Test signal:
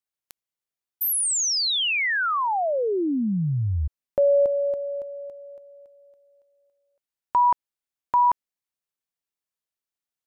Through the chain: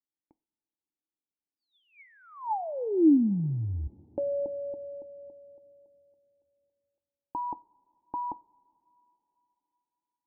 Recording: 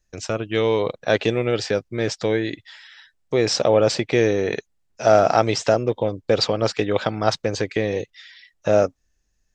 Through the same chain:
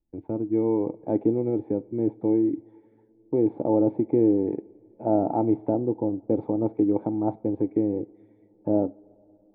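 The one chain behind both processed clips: cascade formant filter u; two-slope reverb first 0.34 s, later 3.9 s, from -21 dB, DRR 15.5 dB; trim +7 dB

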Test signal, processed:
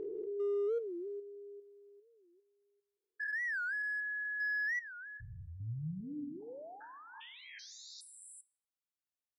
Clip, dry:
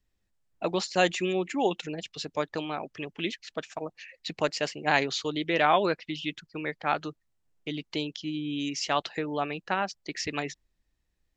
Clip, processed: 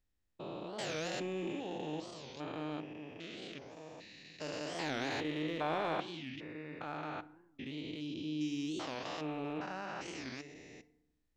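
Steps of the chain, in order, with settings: spectrogram pixelated in time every 400 ms; in parallel at -6 dB: hard clipper -30 dBFS; on the sum: FDN reverb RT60 0.84 s, low-frequency decay 1.5×, high-frequency decay 0.55×, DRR 14.5 dB; warped record 45 rpm, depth 250 cents; trim -8.5 dB

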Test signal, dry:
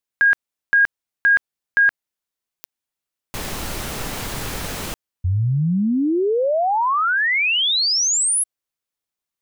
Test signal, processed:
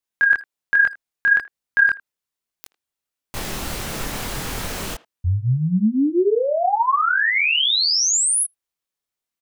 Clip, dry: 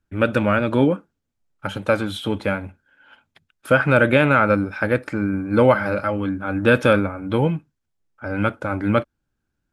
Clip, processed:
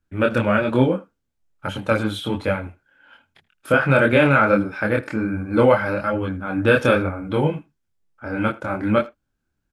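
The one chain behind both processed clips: chorus voices 2, 1.2 Hz, delay 25 ms, depth 3.1 ms; speakerphone echo 80 ms, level -20 dB; trim +3 dB

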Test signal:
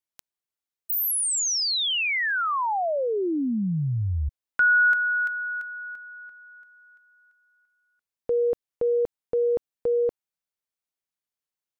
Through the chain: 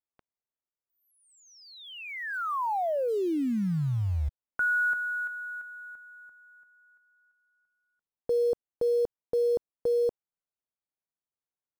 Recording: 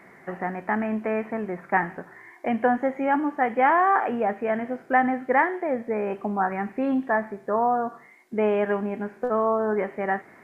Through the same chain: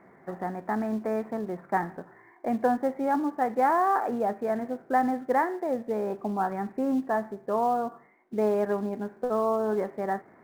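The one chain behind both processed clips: low-pass 1.2 kHz 12 dB/octave; in parallel at -9 dB: short-mantissa float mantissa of 2-bit; on the sum: trim -5 dB

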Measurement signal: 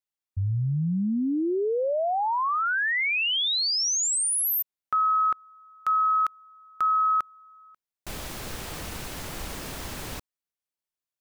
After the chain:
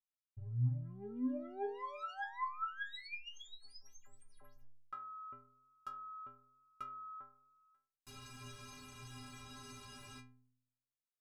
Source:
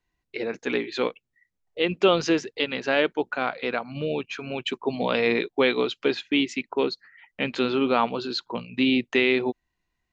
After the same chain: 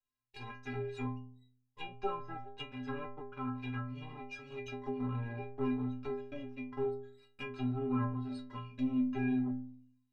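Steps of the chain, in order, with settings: comb filter that takes the minimum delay 0.78 ms; low-pass that closes with the level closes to 930 Hz, closed at -22 dBFS; inharmonic resonator 120 Hz, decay 0.83 s, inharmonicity 0.03; trim +1.5 dB

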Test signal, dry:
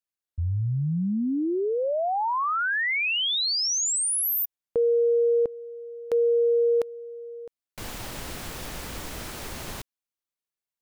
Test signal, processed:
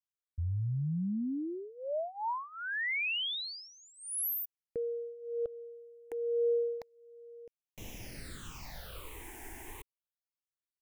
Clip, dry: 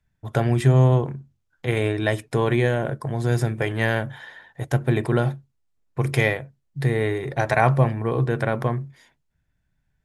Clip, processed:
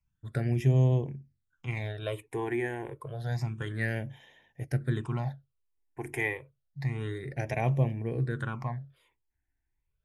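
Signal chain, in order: phase shifter stages 8, 0.29 Hz, lowest notch 160–1400 Hz; trim -8 dB

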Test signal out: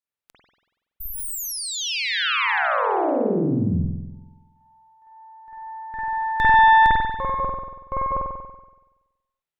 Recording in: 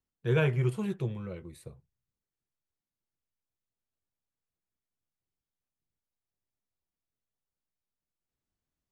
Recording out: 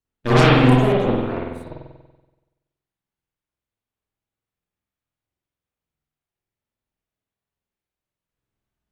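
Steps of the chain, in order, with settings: Chebyshev shaper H 7 -27 dB, 8 -7 dB, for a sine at -14.5 dBFS; spring tank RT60 1.1 s, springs 47 ms, chirp 45 ms, DRR -7.5 dB; trim +2 dB

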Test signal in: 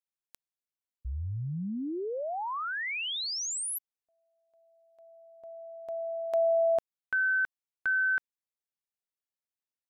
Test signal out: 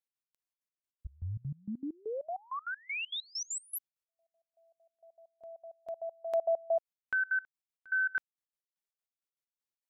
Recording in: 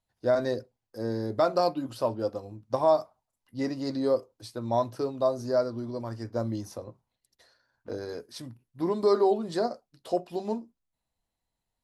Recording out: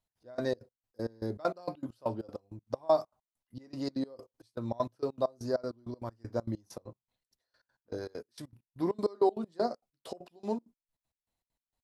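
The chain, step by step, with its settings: trance gate "x.x..xx.x.." 197 bpm -24 dB; trim -2 dB

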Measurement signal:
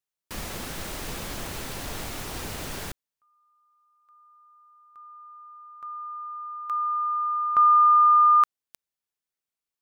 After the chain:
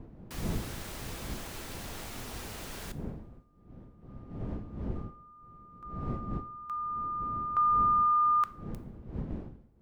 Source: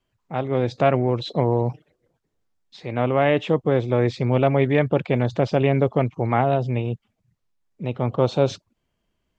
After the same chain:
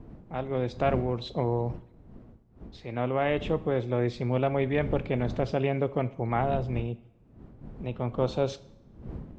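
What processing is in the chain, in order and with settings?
wind noise 200 Hz -34 dBFS; two-slope reverb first 0.59 s, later 1.5 s, DRR 13.5 dB; trim -7.5 dB

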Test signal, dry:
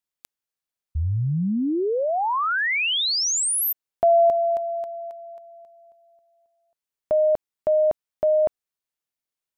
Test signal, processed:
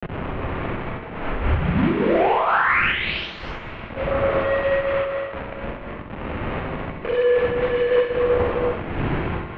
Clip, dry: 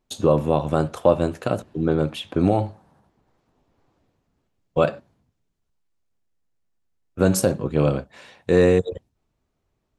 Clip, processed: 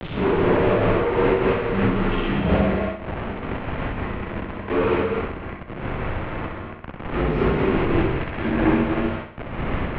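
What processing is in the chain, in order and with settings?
phase randomisation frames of 200 ms; wind noise 110 Hz -23 dBFS; waveshaping leveller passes 1; in parallel at -10 dB: integer overflow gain 14.5 dB; on the sum: bit crusher 4-bit; overload inside the chain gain 13.5 dB; mistuned SSB -130 Hz 170–2900 Hz; on a send: flutter echo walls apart 11.2 m, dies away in 0.65 s; on the sum: gated-style reverb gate 280 ms rising, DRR 2 dB; random flutter of the level, depth 60%

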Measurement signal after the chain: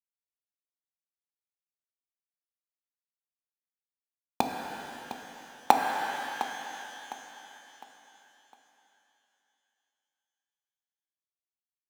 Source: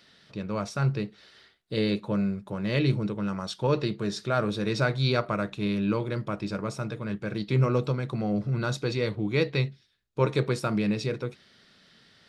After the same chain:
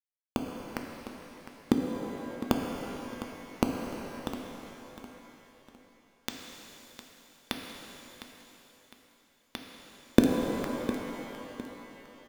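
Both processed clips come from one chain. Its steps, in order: recorder AGC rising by 64 dB/s; high-pass 100 Hz 24 dB/octave; treble shelf 2.9 kHz -9 dB; in parallel at -2 dB: level held to a coarse grid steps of 13 dB; on the sum: small samples zeroed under -8 dBFS; small resonant body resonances 250/3500 Hz, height 14 dB, ringing for 45 ms; tremolo 0.8 Hz, depth 68%; on a send: feedback delay 707 ms, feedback 36%, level -13 dB; on the sum: pitch-shifted reverb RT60 2.9 s, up +12 st, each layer -8 dB, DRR 2 dB; trim -2 dB

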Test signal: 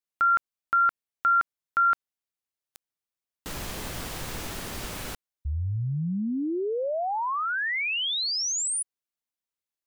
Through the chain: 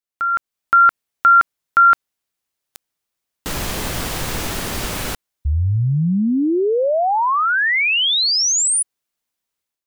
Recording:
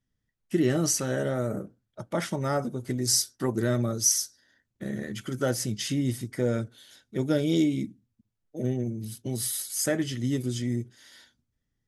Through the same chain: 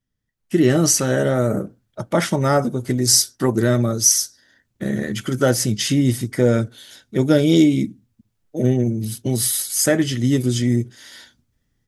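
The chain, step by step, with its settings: level rider gain up to 11 dB

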